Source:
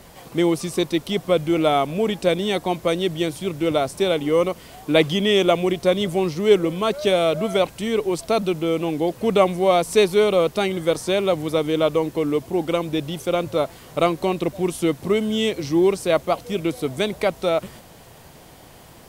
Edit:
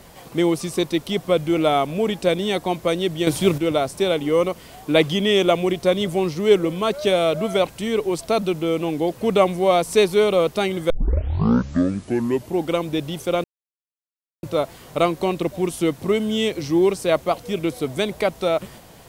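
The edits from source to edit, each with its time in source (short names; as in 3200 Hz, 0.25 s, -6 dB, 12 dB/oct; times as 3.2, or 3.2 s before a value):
3.27–3.58 gain +8.5 dB
10.9 tape start 1.66 s
13.44 insert silence 0.99 s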